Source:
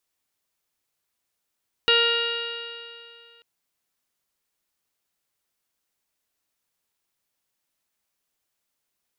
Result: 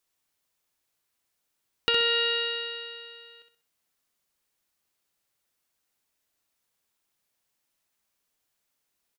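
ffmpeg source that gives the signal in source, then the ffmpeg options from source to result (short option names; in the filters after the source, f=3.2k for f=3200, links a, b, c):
-f lavfi -i "aevalsrc='0.0794*pow(10,-3*t/2.42)*sin(2*PI*466.17*t)+0.0224*pow(10,-3*t/2.42)*sin(2*PI*933.32*t)+0.0708*pow(10,-3*t/2.42)*sin(2*PI*1402.46*t)+0.0447*pow(10,-3*t/2.42)*sin(2*PI*1874.56*t)+0.02*pow(10,-3*t/2.42)*sin(2*PI*2350.59*t)+0.141*pow(10,-3*t/2.42)*sin(2*PI*2831.51*t)+0.0188*pow(10,-3*t/2.42)*sin(2*PI*3318.26*t)+0.0596*pow(10,-3*t/2.42)*sin(2*PI*3811.76*t)+0.02*pow(10,-3*t/2.42)*sin(2*PI*4312.91*t)+0.01*pow(10,-3*t/2.42)*sin(2*PI*4822.59*t)':d=1.54:s=44100"
-filter_complex "[0:a]acompressor=threshold=-22dB:ratio=6,asplit=2[a][b];[b]aecho=0:1:64|128|192|256:0.447|0.147|0.0486|0.0161[c];[a][c]amix=inputs=2:normalize=0"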